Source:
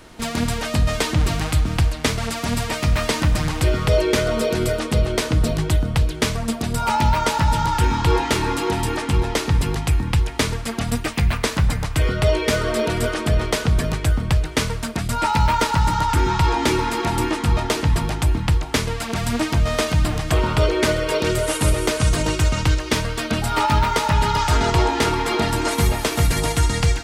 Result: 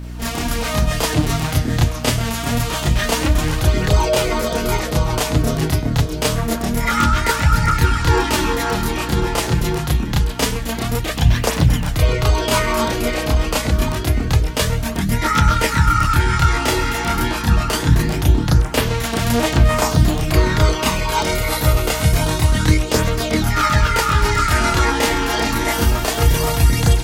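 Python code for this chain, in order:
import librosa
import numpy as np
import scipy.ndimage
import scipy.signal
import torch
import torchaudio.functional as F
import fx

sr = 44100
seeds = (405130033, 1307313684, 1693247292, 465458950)

y = fx.chorus_voices(x, sr, voices=2, hz=0.13, base_ms=30, depth_ms=4.1, mix_pct=60)
y = fx.formant_shift(y, sr, semitones=6)
y = fx.add_hum(y, sr, base_hz=60, snr_db=13)
y = F.gain(torch.from_numpy(y), 5.0).numpy()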